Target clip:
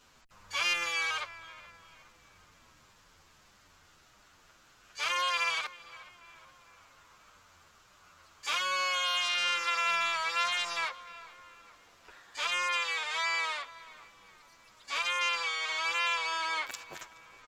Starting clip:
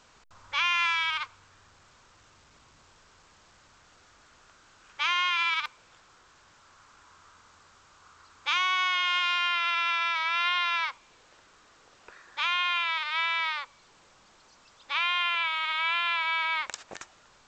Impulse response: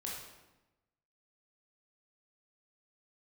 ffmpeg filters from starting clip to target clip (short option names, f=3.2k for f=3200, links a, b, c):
-filter_complex "[0:a]equalizer=f=600:w=1.1:g=-4,asplit=3[a][b][c];[b]asetrate=22050,aresample=44100,atempo=2,volume=-11dB[d];[c]asetrate=88200,aresample=44100,atempo=0.5,volume=-10dB[e];[a][d][e]amix=inputs=3:normalize=0,asoftclip=type=tanh:threshold=-19dB,asplit=2[f][g];[g]adelay=422,lowpass=f=2.9k:p=1,volume=-17dB,asplit=2[h][i];[i]adelay=422,lowpass=f=2.9k:p=1,volume=0.54,asplit=2[j][k];[k]adelay=422,lowpass=f=2.9k:p=1,volume=0.54,asplit=2[l][m];[m]adelay=422,lowpass=f=2.9k:p=1,volume=0.54,asplit=2[n][o];[o]adelay=422,lowpass=f=2.9k:p=1,volume=0.54[p];[h][j][l][n][p]amix=inputs=5:normalize=0[q];[f][q]amix=inputs=2:normalize=0,asplit=2[r][s];[s]adelay=8.5,afreqshift=-1.6[t];[r][t]amix=inputs=2:normalize=1"